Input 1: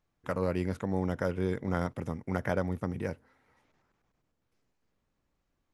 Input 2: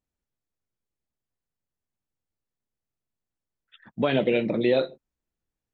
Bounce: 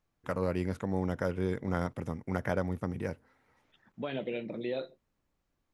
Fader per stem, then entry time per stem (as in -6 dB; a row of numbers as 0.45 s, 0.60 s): -1.0 dB, -13.0 dB; 0.00 s, 0.00 s